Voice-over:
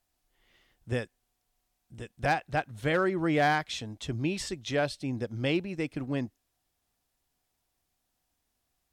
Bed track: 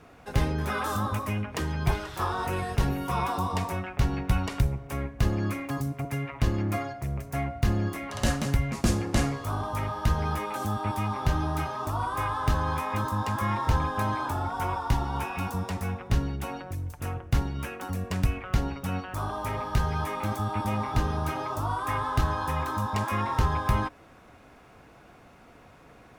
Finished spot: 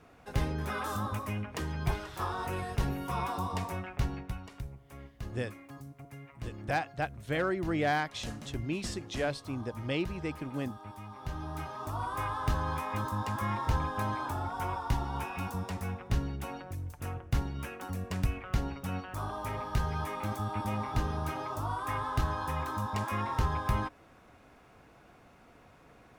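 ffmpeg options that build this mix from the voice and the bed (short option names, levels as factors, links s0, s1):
-filter_complex "[0:a]adelay=4450,volume=0.631[s0];[1:a]volume=2,afade=t=out:st=3.97:d=0.41:silence=0.281838,afade=t=in:st=11.11:d=1.01:silence=0.266073[s1];[s0][s1]amix=inputs=2:normalize=0"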